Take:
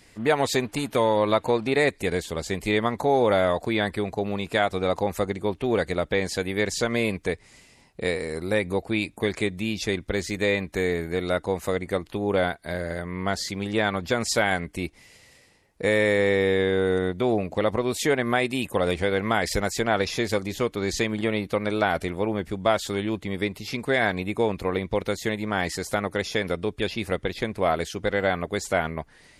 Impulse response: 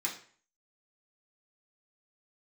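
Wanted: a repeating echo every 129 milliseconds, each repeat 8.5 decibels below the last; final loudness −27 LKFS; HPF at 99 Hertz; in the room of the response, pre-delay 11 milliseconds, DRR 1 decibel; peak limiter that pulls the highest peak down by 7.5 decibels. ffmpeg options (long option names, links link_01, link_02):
-filter_complex "[0:a]highpass=99,alimiter=limit=-15dB:level=0:latency=1,aecho=1:1:129|258|387|516:0.376|0.143|0.0543|0.0206,asplit=2[link_01][link_02];[1:a]atrim=start_sample=2205,adelay=11[link_03];[link_02][link_03]afir=irnorm=-1:irlink=0,volume=-5dB[link_04];[link_01][link_04]amix=inputs=2:normalize=0,volume=-1dB"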